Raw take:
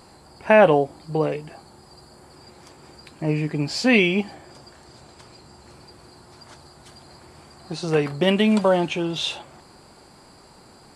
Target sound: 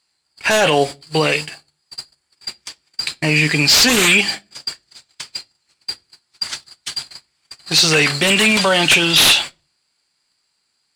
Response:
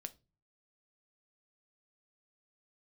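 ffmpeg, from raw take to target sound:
-filter_complex "[0:a]acrossover=split=1900[a][b];[a]bandreject=f=60:t=h:w=6,bandreject=f=120:t=h:w=6[c];[b]aeval=exprs='0.282*sin(PI/2*8.91*val(0)/0.282)':c=same[d];[c][d]amix=inputs=2:normalize=0,alimiter=limit=-11dB:level=0:latency=1:release=24,adynamicsmooth=sensitivity=8:basefreq=7k,agate=range=-39dB:threshold=-28dB:ratio=16:detection=peak,asplit=2[e][f];[1:a]atrim=start_sample=2205[g];[f][g]afir=irnorm=-1:irlink=0,volume=3.5dB[h];[e][h]amix=inputs=2:normalize=0"

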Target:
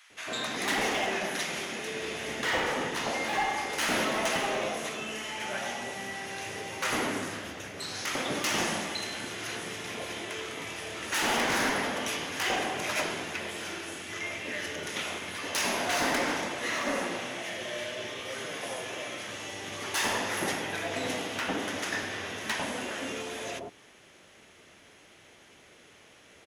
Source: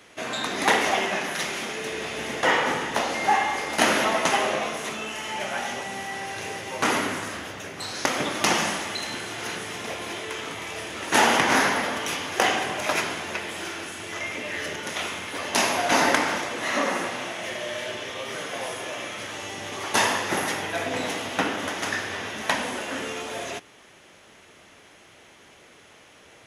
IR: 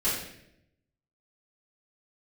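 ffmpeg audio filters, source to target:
-filter_complex "[0:a]asoftclip=type=hard:threshold=-19.5dB,acrossover=split=980[a][b];[a]adelay=100[c];[c][b]amix=inputs=2:normalize=0,volume=-3.5dB"

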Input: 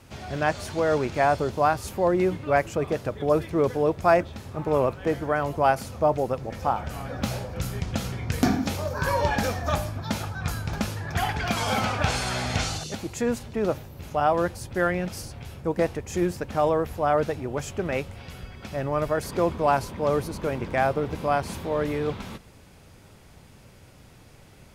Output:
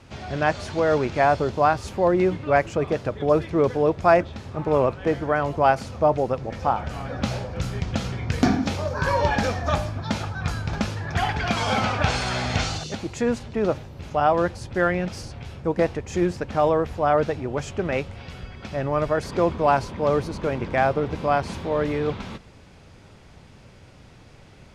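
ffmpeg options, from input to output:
-af "lowpass=6k,volume=2.5dB"

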